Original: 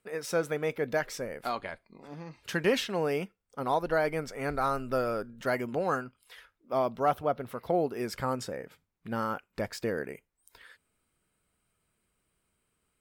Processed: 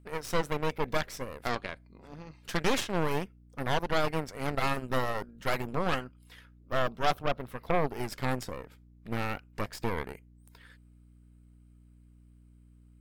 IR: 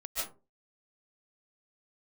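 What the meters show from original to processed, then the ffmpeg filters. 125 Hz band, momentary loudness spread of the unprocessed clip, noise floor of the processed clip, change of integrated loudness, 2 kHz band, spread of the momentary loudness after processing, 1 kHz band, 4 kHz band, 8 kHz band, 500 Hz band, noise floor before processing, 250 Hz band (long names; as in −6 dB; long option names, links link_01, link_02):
+3.5 dB, 14 LU, −57 dBFS, −1.0 dB, +1.0 dB, 14 LU, −0.5 dB, +3.0 dB, +0.5 dB, −3.0 dB, −79 dBFS, −0.5 dB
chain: -af "aeval=exprs='val(0)+0.00251*(sin(2*PI*60*n/s)+sin(2*PI*2*60*n/s)/2+sin(2*PI*3*60*n/s)/3+sin(2*PI*4*60*n/s)/4+sin(2*PI*5*60*n/s)/5)':channel_layout=same,aeval=exprs='0.188*(cos(1*acos(clip(val(0)/0.188,-1,1)))-cos(1*PI/2))+0.0668*(cos(6*acos(clip(val(0)/0.188,-1,1)))-cos(6*PI/2))':channel_layout=same,volume=-3.5dB"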